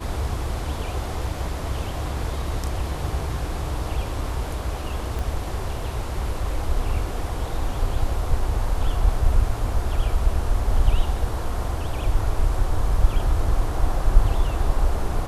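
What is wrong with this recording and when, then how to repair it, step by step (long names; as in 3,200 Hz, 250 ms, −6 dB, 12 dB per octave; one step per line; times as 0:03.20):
0:05.19: click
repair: click removal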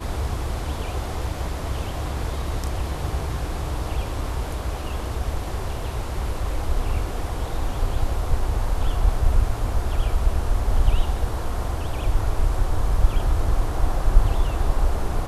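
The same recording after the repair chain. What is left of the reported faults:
0:05.19: click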